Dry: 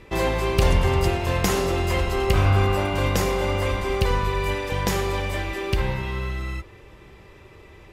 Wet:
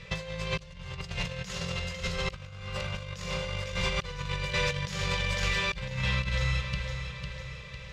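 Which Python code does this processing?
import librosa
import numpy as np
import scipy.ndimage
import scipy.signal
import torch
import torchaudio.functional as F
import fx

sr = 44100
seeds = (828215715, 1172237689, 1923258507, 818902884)

p1 = fx.curve_eq(x, sr, hz=(100.0, 160.0, 310.0, 520.0, 740.0, 1100.0, 4000.0, 6600.0, 13000.0), db=(0, 12, -26, 5, -10, 0, 10, 7, -13))
p2 = p1 + fx.echo_feedback(p1, sr, ms=502, feedback_pct=51, wet_db=-9.5, dry=0)
p3 = fx.over_compress(p2, sr, threshold_db=-25.0, ratio=-0.5)
y = F.gain(torch.from_numpy(p3), -6.5).numpy()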